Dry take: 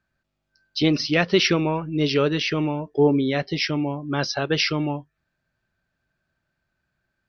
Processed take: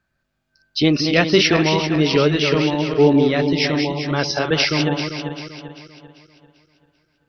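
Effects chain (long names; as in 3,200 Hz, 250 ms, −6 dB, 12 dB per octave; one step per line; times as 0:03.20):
feedback delay that plays each chunk backwards 196 ms, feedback 63%, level −6 dB
level +3.5 dB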